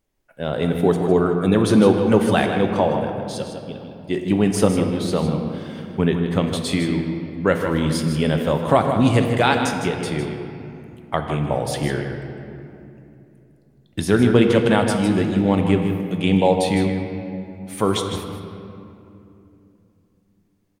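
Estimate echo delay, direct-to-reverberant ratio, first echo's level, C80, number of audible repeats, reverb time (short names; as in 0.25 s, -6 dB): 0.156 s, 3.0 dB, -9.0 dB, 4.5 dB, 1, 2.9 s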